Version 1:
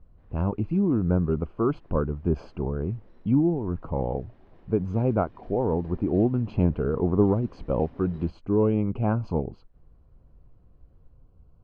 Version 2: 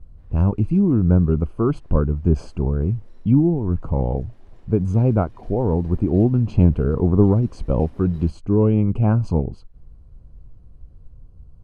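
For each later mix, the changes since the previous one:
speech: add bass shelf 210 Hz +12 dB; master: remove distance through air 240 m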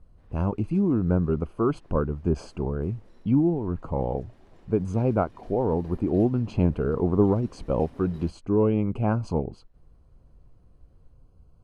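speech: add bass shelf 210 Hz -12 dB

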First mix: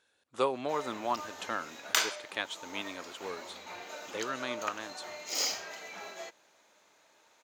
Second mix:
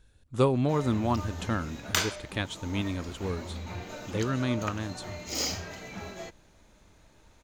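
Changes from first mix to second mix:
speech: add treble shelf 9 kHz +9 dB; master: remove high-pass 560 Hz 12 dB/octave

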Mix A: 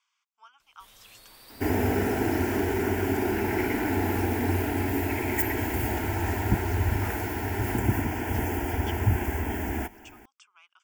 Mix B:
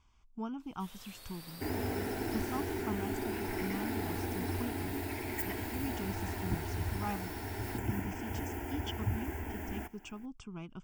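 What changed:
speech: remove high-pass 1.2 kHz 24 dB/octave; second sound -10.5 dB

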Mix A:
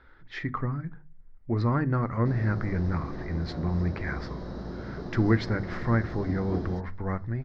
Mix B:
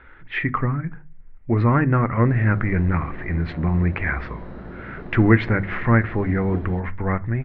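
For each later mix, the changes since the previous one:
speech +7.5 dB; master: add resonant high shelf 3.7 kHz -12.5 dB, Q 3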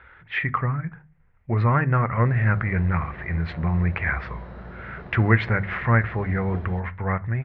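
speech: add high-pass 58 Hz; master: add peaking EQ 290 Hz -12 dB 0.8 oct

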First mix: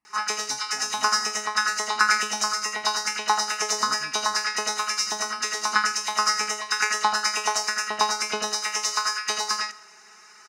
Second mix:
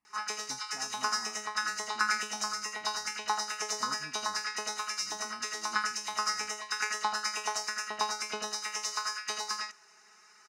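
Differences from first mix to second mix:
background -8.0 dB; reverb: off

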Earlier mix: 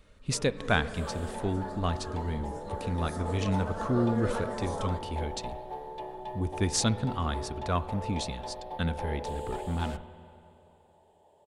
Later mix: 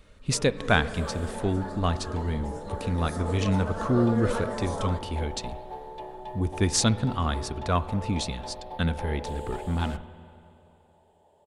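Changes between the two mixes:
speech +4.0 dB; first sound +3.5 dB

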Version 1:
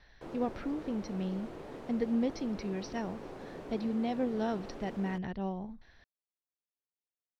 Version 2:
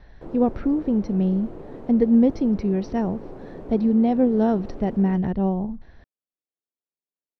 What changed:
speech +6.5 dB; master: add tilt shelf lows +8.5 dB, about 1.2 kHz

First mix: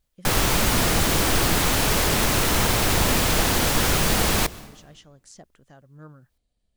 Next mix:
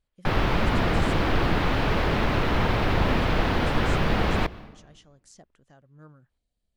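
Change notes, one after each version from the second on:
speech -5.0 dB; background: add distance through air 350 m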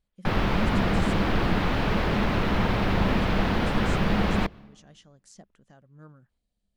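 background: send -9.0 dB; master: add peaking EQ 200 Hz +9.5 dB 0.24 oct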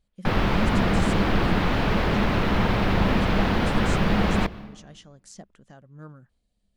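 speech +6.0 dB; background: send +10.0 dB

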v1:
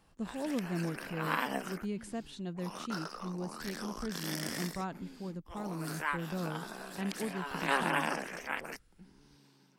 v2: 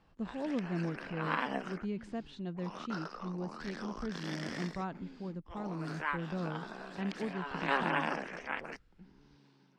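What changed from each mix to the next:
master: add distance through air 150 m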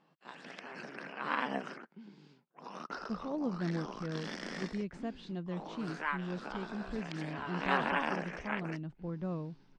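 speech: entry +2.90 s; master: add low-pass 9.1 kHz 12 dB/octave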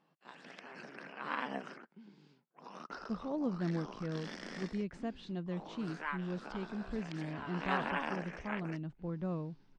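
background -4.0 dB

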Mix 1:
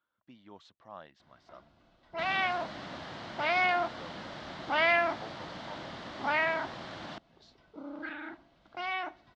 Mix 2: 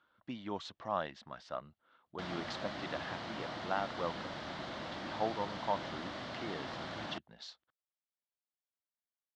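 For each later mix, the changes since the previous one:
speech +12.0 dB; first sound: muted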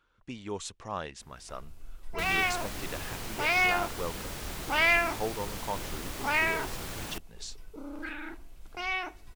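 first sound: unmuted; master: remove cabinet simulation 160–4100 Hz, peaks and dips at 430 Hz -9 dB, 640 Hz +5 dB, 2.5 kHz -8 dB

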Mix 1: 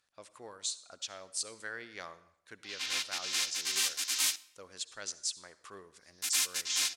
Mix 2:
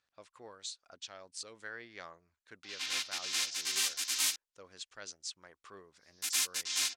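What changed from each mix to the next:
speech: add distance through air 70 m; reverb: off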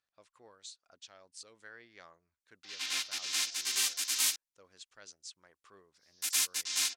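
speech -7.0 dB; master: add treble shelf 8.5 kHz +4.5 dB

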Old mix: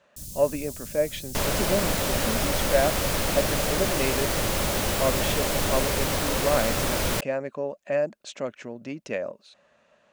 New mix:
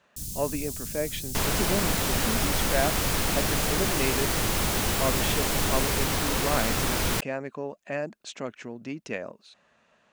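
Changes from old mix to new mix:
first sound +3.5 dB; master: add peaking EQ 570 Hz -9 dB 0.3 oct

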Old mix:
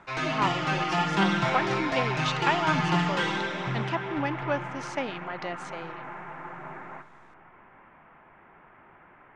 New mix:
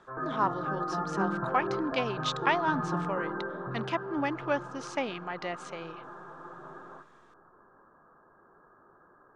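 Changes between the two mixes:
speech: send -7.5 dB; background: add rippled Chebyshev low-pass 1.7 kHz, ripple 9 dB

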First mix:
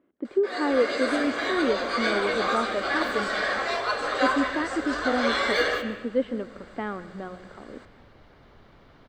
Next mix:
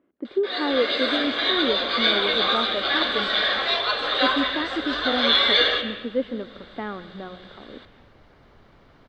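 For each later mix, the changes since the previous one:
first sound: add resonant low-pass 3.6 kHz, resonance Q 7.6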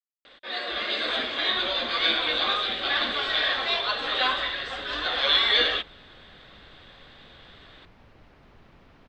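speech: muted; reverb: off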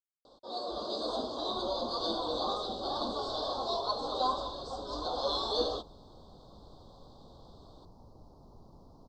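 master: add elliptic band-stop 1–4.6 kHz, stop band 80 dB

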